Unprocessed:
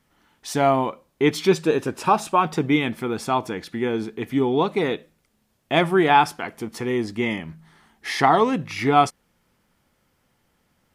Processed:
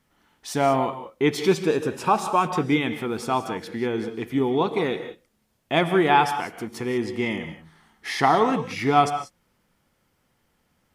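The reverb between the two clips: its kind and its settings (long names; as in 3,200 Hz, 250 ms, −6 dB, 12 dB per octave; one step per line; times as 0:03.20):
reverb whose tail is shaped and stops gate 210 ms rising, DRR 9.5 dB
level −2 dB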